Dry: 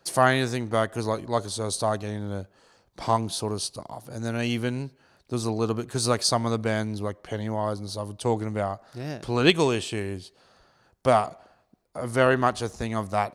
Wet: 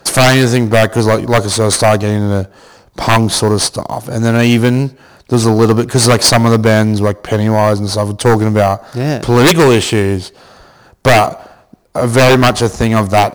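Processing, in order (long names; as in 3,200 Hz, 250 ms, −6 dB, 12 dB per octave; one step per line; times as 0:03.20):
in parallel at −11 dB: sample-rate reduction 5,300 Hz, jitter 0%
on the sum: sine wavefolder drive 13 dB, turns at −3 dBFS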